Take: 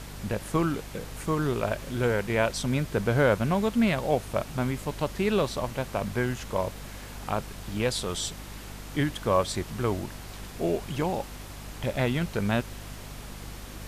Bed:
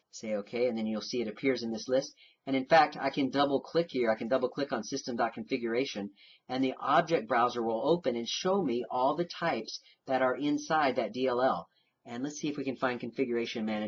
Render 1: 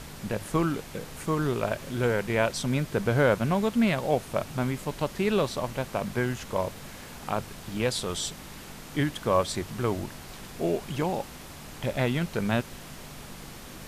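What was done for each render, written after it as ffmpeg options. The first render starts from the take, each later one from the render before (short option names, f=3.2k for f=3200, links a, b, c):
-af "bandreject=f=50:t=h:w=6,bandreject=f=100:t=h:w=6"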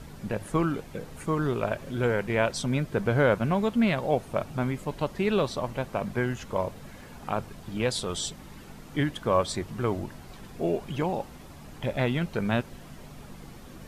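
-af "afftdn=nr=9:nf=-44"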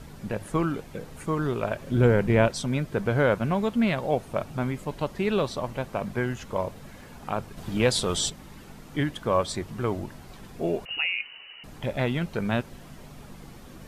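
-filter_complex "[0:a]asettb=1/sr,asplit=3[a][b][c];[a]atrim=end=1.914[d];[b]atrim=start=1.91:end=2.48,asetpts=PTS-STARTPTS,afade=t=in:d=0.004:c=qsin,afade=t=out:st=0.566:d=0.004:c=qsin,lowshelf=f=440:g=10[e];[c]atrim=start=2.476[f];[d][e]acrossfade=d=0.004:c1=hsin:c2=qsin[g];[g][f]acrossfade=d=0.004:c1=qsin:c2=hsin,asettb=1/sr,asplit=3[h][i][j];[h]atrim=end=7.574[k];[i]atrim=start=7.57:end=8.3,asetpts=PTS-STARTPTS,afade=t=in:d=0.004:c=qsin,afade=t=out:st=0.726:d=0.004:c=qsin,acontrast=28[l];[j]atrim=start=8.296[m];[k][l]acrossfade=d=0.004:c1=hsin:c2=qsin[n];[n][m]acrossfade=d=0.004:c1=qsin:c2=hsin,asettb=1/sr,asplit=3[o][p][q];[o]atrim=end=10.854[r];[p]atrim=start=10.85:end=11.64,asetpts=PTS-STARTPTS,afade=t=in:d=0.004:c=qsin,afade=t=out:st=0.786:d=0.004:c=qsin,lowpass=f=2.6k:t=q:w=0.5098,lowpass=f=2.6k:t=q:w=0.6013,lowpass=f=2.6k:t=q:w=0.9,lowpass=f=2.6k:t=q:w=2.563,afreqshift=-3000[s];[q]atrim=start=11.636[t];[r][s]acrossfade=d=0.004:c1=hsin:c2=qsin[u];[u][t]acrossfade=d=0.004:c1=qsin:c2=hsin"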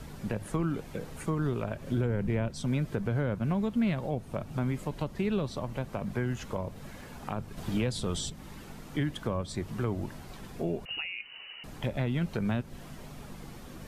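-filter_complex "[0:a]acrossover=split=270[a][b];[a]alimiter=limit=-24dB:level=0:latency=1[c];[b]acompressor=threshold=-34dB:ratio=6[d];[c][d]amix=inputs=2:normalize=0"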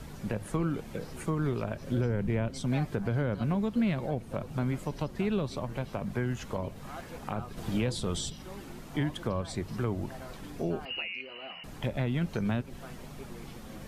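-filter_complex "[1:a]volume=-19dB[a];[0:a][a]amix=inputs=2:normalize=0"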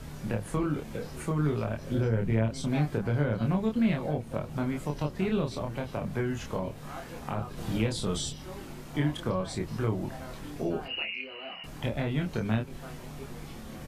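-filter_complex "[0:a]asplit=2[a][b];[b]adelay=27,volume=-3dB[c];[a][c]amix=inputs=2:normalize=0"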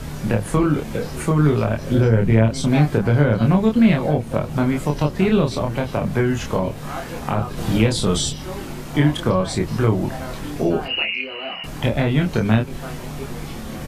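-af "volume=11.5dB"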